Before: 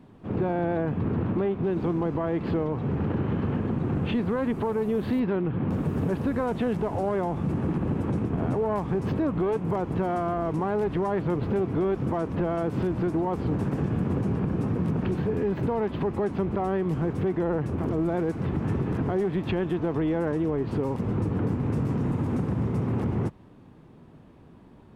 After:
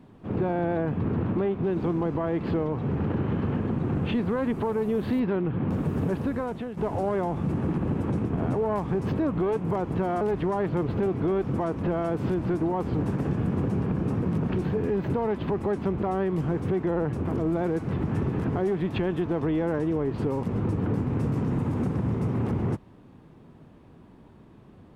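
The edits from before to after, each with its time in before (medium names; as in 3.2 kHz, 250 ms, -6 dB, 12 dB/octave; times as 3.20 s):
5.95–6.77 s: fade out equal-power, to -13 dB
10.21–10.74 s: delete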